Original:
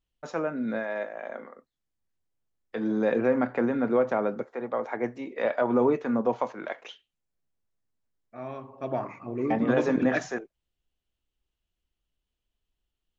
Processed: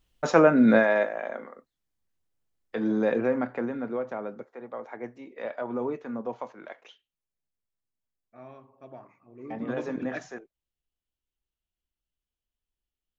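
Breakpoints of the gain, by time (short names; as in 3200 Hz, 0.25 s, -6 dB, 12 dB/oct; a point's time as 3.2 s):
0.76 s +12 dB
1.39 s +1.5 dB
2.91 s +1.5 dB
4 s -8 dB
8.4 s -8 dB
9.27 s -20 dB
9.61 s -8 dB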